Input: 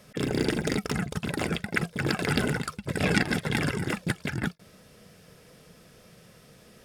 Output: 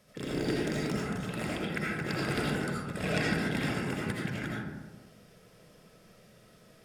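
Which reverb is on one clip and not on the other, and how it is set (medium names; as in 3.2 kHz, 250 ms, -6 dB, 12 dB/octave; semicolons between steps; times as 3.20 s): algorithmic reverb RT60 1.2 s, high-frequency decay 0.4×, pre-delay 40 ms, DRR -5 dB; trim -10 dB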